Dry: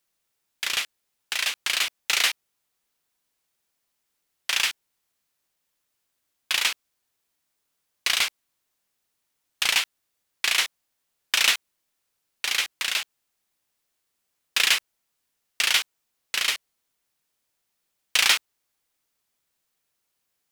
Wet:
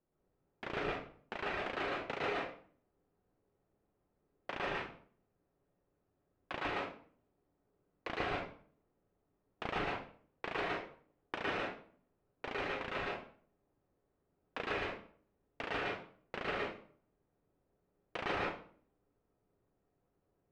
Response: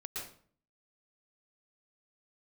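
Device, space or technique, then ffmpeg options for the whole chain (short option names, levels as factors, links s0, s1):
television next door: -filter_complex "[0:a]acompressor=threshold=0.0891:ratio=6,lowpass=510[s0];[1:a]atrim=start_sample=2205[s1];[s0][s1]afir=irnorm=-1:irlink=0,volume=4.73"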